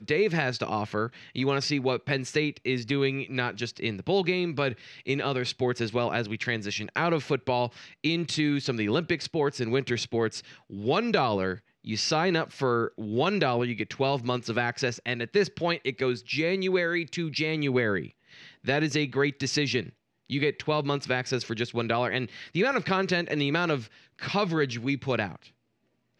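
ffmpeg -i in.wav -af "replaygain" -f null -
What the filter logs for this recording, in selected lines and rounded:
track_gain = +8.2 dB
track_peak = 0.214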